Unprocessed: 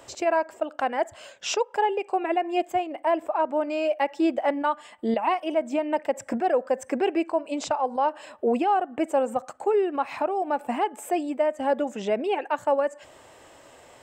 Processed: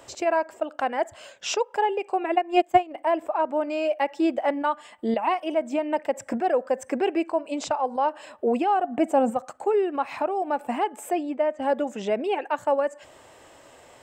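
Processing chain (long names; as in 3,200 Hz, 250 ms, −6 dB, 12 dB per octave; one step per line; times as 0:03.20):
0:02.35–0:02.97: transient designer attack +10 dB, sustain −8 dB
0:08.83–0:09.29: hollow resonant body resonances 210/710 Hz, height 11 dB → 15 dB
0:11.13–0:11.62: high-frequency loss of the air 110 metres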